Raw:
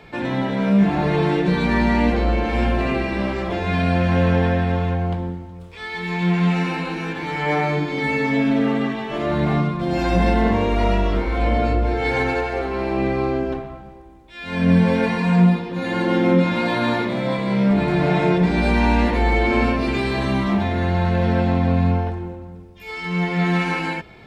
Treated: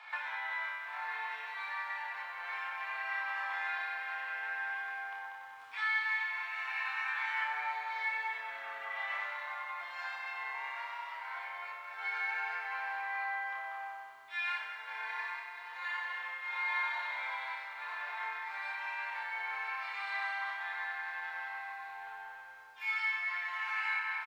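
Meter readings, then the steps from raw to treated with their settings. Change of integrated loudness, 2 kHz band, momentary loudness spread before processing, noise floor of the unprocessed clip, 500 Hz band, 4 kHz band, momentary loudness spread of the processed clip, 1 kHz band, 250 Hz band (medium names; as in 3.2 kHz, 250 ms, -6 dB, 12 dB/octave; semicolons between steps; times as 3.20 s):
-17.0 dB, -7.0 dB, 9 LU, -39 dBFS, -35.0 dB, -15.0 dB, 9 LU, -13.5 dB, under -40 dB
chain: speakerphone echo 190 ms, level -10 dB; compression 8:1, threshold -31 dBFS, peak gain reduction 20 dB; dynamic bell 1.9 kHz, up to +6 dB, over -52 dBFS, Q 1.9; steep high-pass 940 Hz 36 dB/octave; tilt EQ -4 dB/octave; flutter echo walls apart 5 m, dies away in 0.45 s; bit-crushed delay 95 ms, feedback 80%, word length 11-bit, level -11.5 dB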